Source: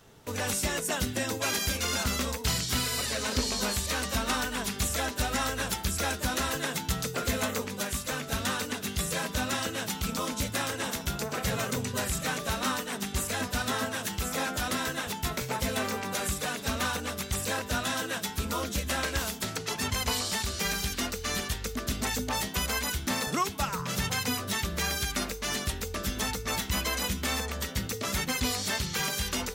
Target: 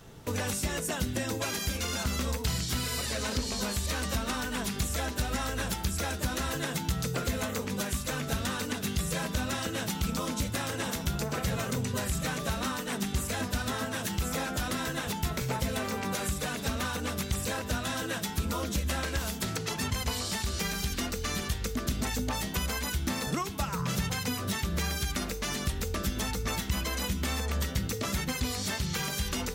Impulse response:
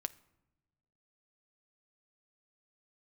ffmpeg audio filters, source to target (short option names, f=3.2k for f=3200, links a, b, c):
-filter_complex "[0:a]acompressor=threshold=-33dB:ratio=6,asplit=2[a][b];[1:a]atrim=start_sample=2205,lowshelf=f=310:g=8[c];[b][c]afir=irnorm=-1:irlink=0,volume=9.5dB[d];[a][d]amix=inputs=2:normalize=0,volume=-8.5dB"